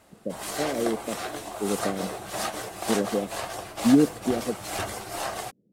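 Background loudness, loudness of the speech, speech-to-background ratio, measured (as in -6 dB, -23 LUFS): -32.5 LUFS, -27.5 LUFS, 5.0 dB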